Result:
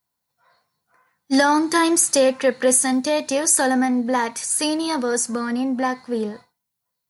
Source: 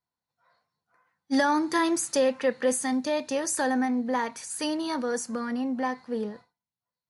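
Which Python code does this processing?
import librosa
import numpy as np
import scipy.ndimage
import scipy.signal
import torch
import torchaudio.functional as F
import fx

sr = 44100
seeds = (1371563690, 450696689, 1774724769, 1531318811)

y = fx.high_shelf(x, sr, hz=7600.0, db=11.5)
y = y * librosa.db_to_amplitude(6.5)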